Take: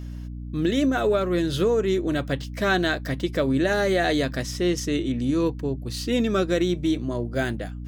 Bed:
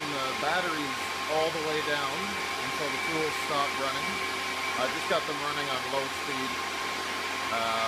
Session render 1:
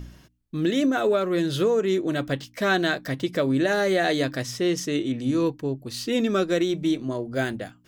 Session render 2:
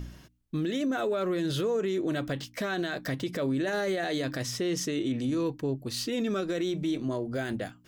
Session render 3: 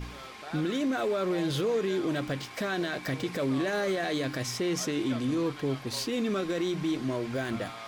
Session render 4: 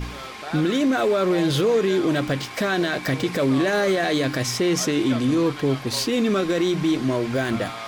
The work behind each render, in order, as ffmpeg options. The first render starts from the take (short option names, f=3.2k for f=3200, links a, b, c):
-af "bandreject=f=60:t=h:w=4,bandreject=f=120:t=h:w=4,bandreject=f=180:t=h:w=4,bandreject=f=240:t=h:w=4,bandreject=f=300:t=h:w=4"
-af "alimiter=limit=-22.5dB:level=0:latency=1:release=38"
-filter_complex "[1:a]volume=-14dB[a];[0:a][a]amix=inputs=2:normalize=0"
-af "volume=8.5dB"